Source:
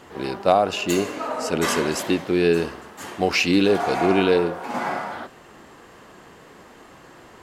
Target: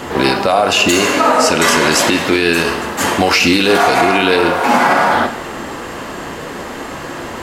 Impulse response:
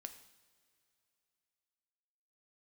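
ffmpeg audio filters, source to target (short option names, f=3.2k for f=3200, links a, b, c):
-filter_complex "[0:a]acrossover=split=850|7900[a][b][c];[a]acompressor=threshold=-33dB:ratio=4[d];[b]acompressor=threshold=-29dB:ratio=4[e];[c]acompressor=threshold=-44dB:ratio=4[f];[d][e][f]amix=inputs=3:normalize=0[g];[1:a]atrim=start_sample=2205[h];[g][h]afir=irnorm=-1:irlink=0,alimiter=level_in=26.5dB:limit=-1dB:release=50:level=0:latency=1,volume=-1dB"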